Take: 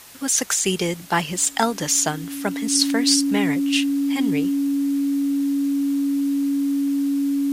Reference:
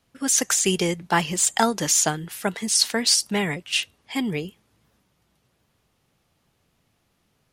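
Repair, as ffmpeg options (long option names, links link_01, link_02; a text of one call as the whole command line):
ffmpeg -i in.wav -af "adeclick=threshold=4,bandreject=frequency=280:width=30,afwtdn=0.0071" out.wav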